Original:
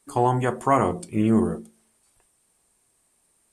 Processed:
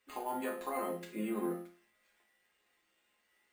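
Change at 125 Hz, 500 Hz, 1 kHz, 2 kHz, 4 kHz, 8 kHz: -26.0 dB, -14.0 dB, -16.0 dB, -12.0 dB, no reading, -11.0 dB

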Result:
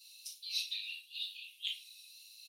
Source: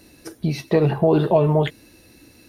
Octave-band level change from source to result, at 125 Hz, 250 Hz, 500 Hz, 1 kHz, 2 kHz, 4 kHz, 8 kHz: under -40 dB, under -40 dB, under -40 dB, under -40 dB, -11.5 dB, +1.5 dB, no reading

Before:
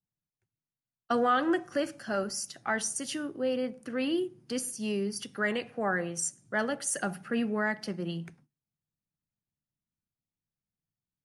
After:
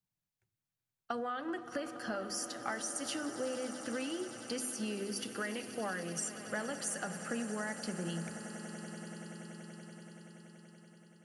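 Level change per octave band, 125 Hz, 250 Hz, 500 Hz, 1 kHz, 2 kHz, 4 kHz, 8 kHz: -4.0 dB, -7.0 dB, -8.0 dB, -8.5 dB, -7.5 dB, -3.5 dB, -4.0 dB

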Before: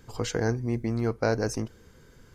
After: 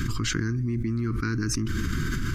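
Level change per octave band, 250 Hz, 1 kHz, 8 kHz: +3.0 dB, -3.0 dB, +6.0 dB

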